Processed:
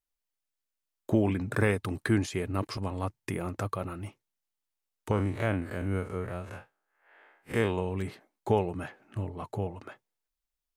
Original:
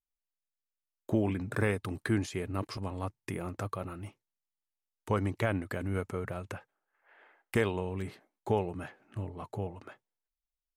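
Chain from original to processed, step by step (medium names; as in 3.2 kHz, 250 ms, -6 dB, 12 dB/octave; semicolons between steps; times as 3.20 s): 5.11–7.78 s: spectral blur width 87 ms; trim +3.5 dB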